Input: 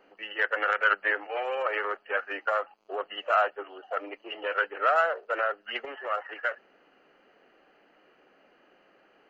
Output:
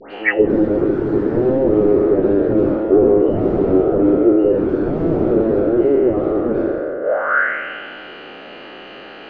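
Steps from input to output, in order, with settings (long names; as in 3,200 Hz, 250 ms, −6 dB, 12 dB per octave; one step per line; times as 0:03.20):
peak hold with a decay on every bin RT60 2.59 s
low-shelf EQ 310 Hz +6 dB
in parallel at −4.5 dB: sine wavefolder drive 19 dB, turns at −6.5 dBFS
on the sum: all-pass dispersion highs, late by 121 ms, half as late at 1,900 Hz
envelope-controlled low-pass 350–4,500 Hz down, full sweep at −11.5 dBFS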